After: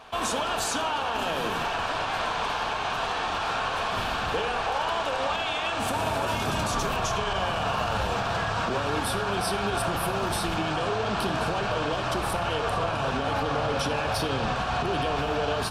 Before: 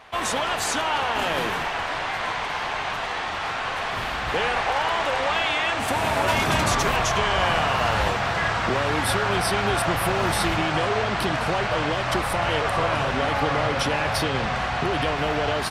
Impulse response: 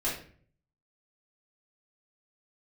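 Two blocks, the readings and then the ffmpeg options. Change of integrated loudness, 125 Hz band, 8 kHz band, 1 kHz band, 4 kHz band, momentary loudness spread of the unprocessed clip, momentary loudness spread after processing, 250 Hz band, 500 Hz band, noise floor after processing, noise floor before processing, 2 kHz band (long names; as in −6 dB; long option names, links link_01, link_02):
−4.0 dB, −4.0 dB, −4.0 dB, −3.5 dB, −4.0 dB, 6 LU, 1 LU, −3.0 dB, −3.0 dB, −29 dBFS, −28 dBFS, −6.0 dB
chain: -filter_complex "[0:a]alimiter=limit=-19dB:level=0:latency=1:release=86,equalizer=frequency=2000:width_type=o:width=0.25:gain=-13,asplit=2[link_01][link_02];[1:a]atrim=start_sample=2205,asetrate=29106,aresample=44100[link_03];[link_02][link_03]afir=irnorm=-1:irlink=0,volume=-18dB[link_04];[link_01][link_04]amix=inputs=2:normalize=0"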